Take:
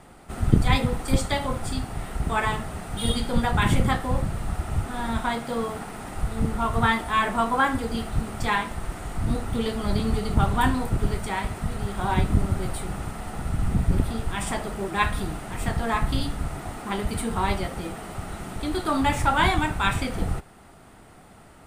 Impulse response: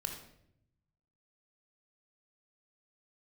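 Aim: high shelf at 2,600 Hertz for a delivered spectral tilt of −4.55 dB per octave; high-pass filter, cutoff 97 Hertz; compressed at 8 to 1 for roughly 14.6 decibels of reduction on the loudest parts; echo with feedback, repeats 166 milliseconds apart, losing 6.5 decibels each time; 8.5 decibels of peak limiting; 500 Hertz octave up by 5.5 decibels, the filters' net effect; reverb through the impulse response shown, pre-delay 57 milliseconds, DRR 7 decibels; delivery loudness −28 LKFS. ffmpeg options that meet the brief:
-filter_complex "[0:a]highpass=97,equalizer=frequency=500:width_type=o:gain=6.5,highshelf=frequency=2600:gain=6.5,acompressor=threshold=-27dB:ratio=8,alimiter=limit=-23dB:level=0:latency=1,aecho=1:1:166|332|498|664|830|996:0.473|0.222|0.105|0.0491|0.0231|0.0109,asplit=2[link_01][link_02];[1:a]atrim=start_sample=2205,adelay=57[link_03];[link_02][link_03]afir=irnorm=-1:irlink=0,volume=-7dB[link_04];[link_01][link_04]amix=inputs=2:normalize=0,volume=3dB"

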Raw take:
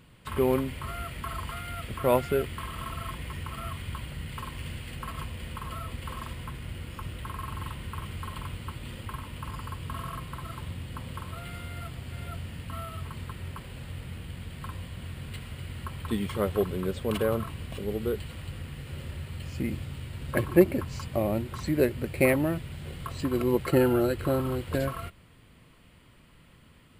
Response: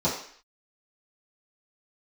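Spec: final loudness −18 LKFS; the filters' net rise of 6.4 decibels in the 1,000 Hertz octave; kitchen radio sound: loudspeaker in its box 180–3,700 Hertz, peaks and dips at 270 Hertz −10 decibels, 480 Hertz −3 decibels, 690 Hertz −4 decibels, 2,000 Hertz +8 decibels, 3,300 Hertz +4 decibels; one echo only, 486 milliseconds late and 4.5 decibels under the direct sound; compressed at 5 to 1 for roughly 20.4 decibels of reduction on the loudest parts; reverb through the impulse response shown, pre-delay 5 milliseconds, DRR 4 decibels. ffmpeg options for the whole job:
-filter_complex "[0:a]equalizer=frequency=1000:width_type=o:gain=8,acompressor=threshold=-36dB:ratio=5,aecho=1:1:486:0.596,asplit=2[link_01][link_02];[1:a]atrim=start_sample=2205,adelay=5[link_03];[link_02][link_03]afir=irnorm=-1:irlink=0,volume=-16.5dB[link_04];[link_01][link_04]amix=inputs=2:normalize=0,highpass=180,equalizer=frequency=270:width_type=q:width=4:gain=-10,equalizer=frequency=480:width_type=q:width=4:gain=-3,equalizer=frequency=690:width_type=q:width=4:gain=-4,equalizer=frequency=2000:width_type=q:width=4:gain=8,equalizer=frequency=3300:width_type=q:width=4:gain=4,lowpass=frequency=3700:width=0.5412,lowpass=frequency=3700:width=1.3066,volume=20.5dB"

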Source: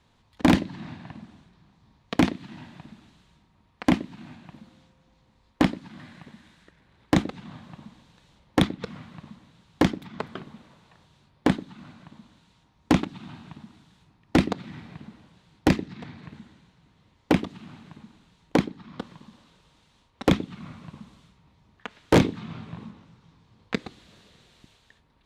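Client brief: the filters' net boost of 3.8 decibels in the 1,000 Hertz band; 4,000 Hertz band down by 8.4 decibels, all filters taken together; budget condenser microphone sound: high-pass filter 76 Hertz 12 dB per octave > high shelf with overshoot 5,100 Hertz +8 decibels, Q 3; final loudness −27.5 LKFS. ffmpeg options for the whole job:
ffmpeg -i in.wav -af "highpass=76,equalizer=frequency=1000:width_type=o:gain=5.5,equalizer=frequency=4000:width_type=o:gain=-8.5,highshelf=frequency=5100:width_type=q:width=3:gain=8,volume=-1.5dB" out.wav

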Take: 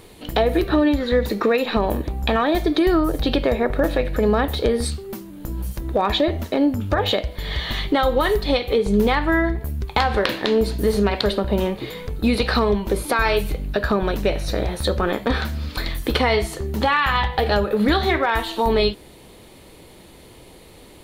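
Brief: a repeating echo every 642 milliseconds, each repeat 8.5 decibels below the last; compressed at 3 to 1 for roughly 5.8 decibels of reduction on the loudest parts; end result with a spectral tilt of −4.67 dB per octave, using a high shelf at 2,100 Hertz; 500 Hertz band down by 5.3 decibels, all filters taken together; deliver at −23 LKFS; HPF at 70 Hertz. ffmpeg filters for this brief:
ffmpeg -i in.wav -af "highpass=70,equalizer=frequency=500:width_type=o:gain=-6,highshelf=frequency=2100:gain=-8.5,acompressor=threshold=-24dB:ratio=3,aecho=1:1:642|1284|1926|2568:0.376|0.143|0.0543|0.0206,volume=5dB" out.wav

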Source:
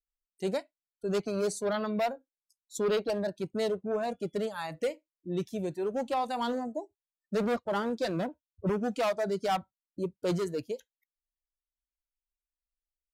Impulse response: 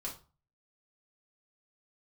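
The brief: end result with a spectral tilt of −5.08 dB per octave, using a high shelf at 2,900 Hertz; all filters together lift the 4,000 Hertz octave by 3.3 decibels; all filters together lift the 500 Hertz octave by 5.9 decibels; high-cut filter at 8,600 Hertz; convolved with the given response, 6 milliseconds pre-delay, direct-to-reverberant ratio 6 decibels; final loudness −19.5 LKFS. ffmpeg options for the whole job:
-filter_complex "[0:a]lowpass=8600,equalizer=frequency=500:width_type=o:gain=7.5,highshelf=frequency=2900:gain=-4.5,equalizer=frequency=4000:width_type=o:gain=7.5,asplit=2[link_01][link_02];[1:a]atrim=start_sample=2205,adelay=6[link_03];[link_02][link_03]afir=irnorm=-1:irlink=0,volume=-6dB[link_04];[link_01][link_04]amix=inputs=2:normalize=0,volume=7.5dB"

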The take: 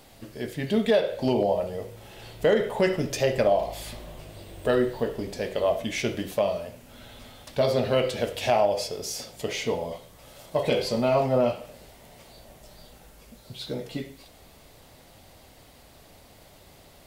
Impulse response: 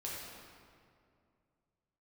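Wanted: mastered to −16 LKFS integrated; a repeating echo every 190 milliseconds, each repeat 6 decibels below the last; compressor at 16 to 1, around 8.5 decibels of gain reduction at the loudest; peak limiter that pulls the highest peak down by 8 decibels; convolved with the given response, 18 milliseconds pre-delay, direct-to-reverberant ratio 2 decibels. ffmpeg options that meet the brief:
-filter_complex "[0:a]acompressor=threshold=-25dB:ratio=16,alimiter=limit=-22.5dB:level=0:latency=1,aecho=1:1:190|380|570|760|950|1140:0.501|0.251|0.125|0.0626|0.0313|0.0157,asplit=2[link_01][link_02];[1:a]atrim=start_sample=2205,adelay=18[link_03];[link_02][link_03]afir=irnorm=-1:irlink=0,volume=-3dB[link_04];[link_01][link_04]amix=inputs=2:normalize=0,volume=14.5dB"

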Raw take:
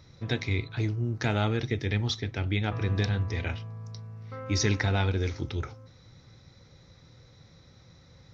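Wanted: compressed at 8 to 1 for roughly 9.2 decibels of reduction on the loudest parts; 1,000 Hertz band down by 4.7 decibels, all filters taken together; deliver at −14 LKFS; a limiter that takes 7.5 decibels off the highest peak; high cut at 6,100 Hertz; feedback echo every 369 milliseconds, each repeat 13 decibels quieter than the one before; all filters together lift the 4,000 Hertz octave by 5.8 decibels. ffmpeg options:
ffmpeg -i in.wav -af "lowpass=6100,equalizer=frequency=1000:width_type=o:gain=-7.5,equalizer=frequency=4000:width_type=o:gain=8,acompressor=threshold=-31dB:ratio=8,alimiter=level_in=3dB:limit=-24dB:level=0:latency=1,volume=-3dB,aecho=1:1:369|738|1107:0.224|0.0493|0.0108,volume=24.5dB" out.wav

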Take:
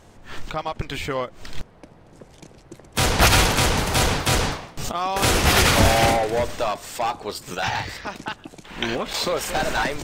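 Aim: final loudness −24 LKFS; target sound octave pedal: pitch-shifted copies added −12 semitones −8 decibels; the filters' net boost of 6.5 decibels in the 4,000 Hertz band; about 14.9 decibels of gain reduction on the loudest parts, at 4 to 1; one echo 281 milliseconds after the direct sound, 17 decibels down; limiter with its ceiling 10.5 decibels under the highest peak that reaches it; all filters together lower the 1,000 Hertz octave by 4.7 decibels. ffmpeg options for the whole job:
ffmpeg -i in.wav -filter_complex "[0:a]equalizer=frequency=1000:width_type=o:gain=-7,equalizer=frequency=4000:width_type=o:gain=8.5,acompressor=threshold=-29dB:ratio=4,alimiter=limit=-24dB:level=0:latency=1,aecho=1:1:281:0.141,asplit=2[link_01][link_02];[link_02]asetrate=22050,aresample=44100,atempo=2,volume=-8dB[link_03];[link_01][link_03]amix=inputs=2:normalize=0,volume=9dB" out.wav

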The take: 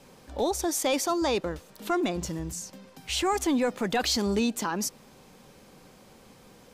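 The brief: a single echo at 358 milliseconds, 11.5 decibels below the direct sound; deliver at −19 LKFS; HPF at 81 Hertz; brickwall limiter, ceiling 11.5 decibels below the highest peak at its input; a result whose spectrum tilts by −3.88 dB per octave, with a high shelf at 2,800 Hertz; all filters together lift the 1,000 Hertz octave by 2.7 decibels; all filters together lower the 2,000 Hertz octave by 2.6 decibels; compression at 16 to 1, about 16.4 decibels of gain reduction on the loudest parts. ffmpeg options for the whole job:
ffmpeg -i in.wav -af "highpass=81,equalizer=frequency=1000:width_type=o:gain=5,equalizer=frequency=2000:width_type=o:gain=-3.5,highshelf=frequency=2800:gain=-4.5,acompressor=threshold=-38dB:ratio=16,alimiter=level_in=14dB:limit=-24dB:level=0:latency=1,volume=-14dB,aecho=1:1:358:0.266,volume=28dB" out.wav

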